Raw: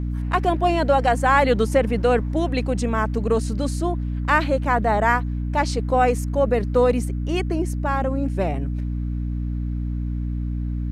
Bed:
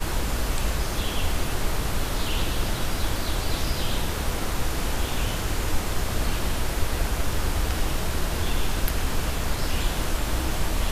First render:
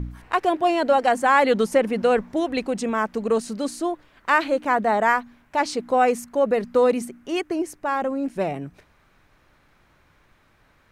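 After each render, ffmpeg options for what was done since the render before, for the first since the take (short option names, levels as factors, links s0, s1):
-af "bandreject=f=60:t=h:w=4,bandreject=f=120:t=h:w=4,bandreject=f=180:t=h:w=4,bandreject=f=240:t=h:w=4,bandreject=f=300:t=h:w=4"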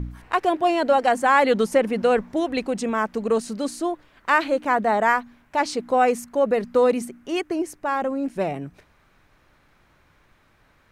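-af anull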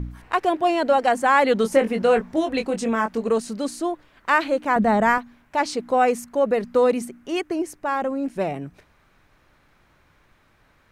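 -filter_complex "[0:a]asettb=1/sr,asplit=3[s0][s1][s2];[s0]atrim=end=1.624[s3];[s1]atrim=start=1.62:end=3.29,asetpts=PTS-STARTPTS,afade=t=in:d=0.004:c=qsin,afade=t=out:st=1.666:d=0.004:c=qsin,asplit=2[s4][s5];[s5]adelay=22,volume=0.501[s6];[s4][s6]amix=inputs=2:normalize=0,atrim=end_sample=73647[s7];[s2]atrim=start=3.286[s8];[s3][s7]acrossfade=d=0.004:c1=hsin:c2=qsin[s9];[s9][s8]acrossfade=d=0.004:c1=qsin:c2=hsin,asettb=1/sr,asplit=3[s10][s11][s12];[s10]atrim=end=4.764[s13];[s11]atrim=start=4.76:end=5.18,asetpts=PTS-STARTPTS,afade=t=in:d=0.004:c=qsin,afade=t=out:st=0.416:d=0.004:c=qsin,bass=f=250:g=14,treble=f=4000:g=1[s14];[s12]atrim=start=5.176[s15];[s13][s14]acrossfade=d=0.004:c1=hsin:c2=qsin[s16];[s16][s15]acrossfade=d=0.004:c1=qsin:c2=hsin"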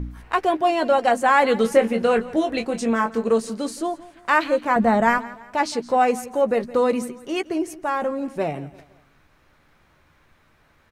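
-filter_complex "[0:a]asplit=2[s0][s1];[s1]adelay=13,volume=0.335[s2];[s0][s2]amix=inputs=2:normalize=0,aecho=1:1:168|336|504:0.119|0.0487|0.02"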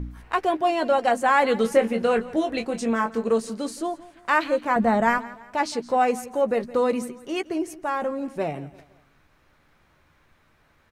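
-af "volume=0.75"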